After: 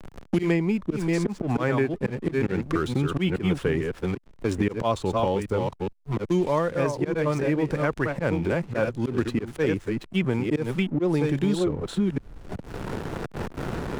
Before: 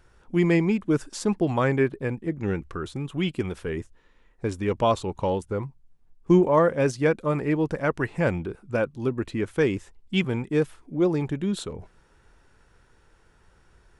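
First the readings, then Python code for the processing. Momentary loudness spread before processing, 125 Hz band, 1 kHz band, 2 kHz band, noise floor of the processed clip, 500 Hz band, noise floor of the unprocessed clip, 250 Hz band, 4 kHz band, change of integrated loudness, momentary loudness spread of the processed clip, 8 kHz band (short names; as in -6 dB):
11 LU, +1.5 dB, -1.0 dB, 0.0 dB, -48 dBFS, -1.0 dB, -60 dBFS, +0.5 dB, 0.0 dB, -1.0 dB, 9 LU, -1.5 dB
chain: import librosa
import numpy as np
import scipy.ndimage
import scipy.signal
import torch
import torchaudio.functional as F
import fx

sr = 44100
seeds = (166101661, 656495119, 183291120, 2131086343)

y = fx.reverse_delay(x, sr, ms=420, wet_db=-6.5)
y = fx.rider(y, sr, range_db=10, speed_s=2.0)
y = fx.auto_swell(y, sr, attack_ms=136.0)
y = fx.backlash(y, sr, play_db=-42.5)
y = fx.band_squash(y, sr, depth_pct=100)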